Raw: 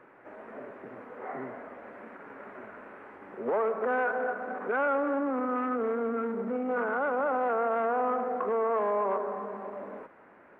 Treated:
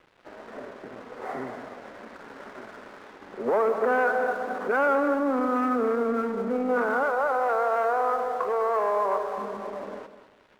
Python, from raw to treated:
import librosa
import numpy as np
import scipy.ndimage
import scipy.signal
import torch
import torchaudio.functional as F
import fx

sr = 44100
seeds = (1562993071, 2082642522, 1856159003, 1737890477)

y = fx.peak_eq(x, sr, hz=230.0, db=-14.5, octaves=0.92, at=(7.03, 9.38))
y = np.sign(y) * np.maximum(np.abs(y) - 10.0 ** (-54.0 / 20.0), 0.0)
y = fx.echo_feedback(y, sr, ms=202, feedback_pct=28, wet_db=-12.0)
y = F.gain(torch.from_numpy(y), 5.0).numpy()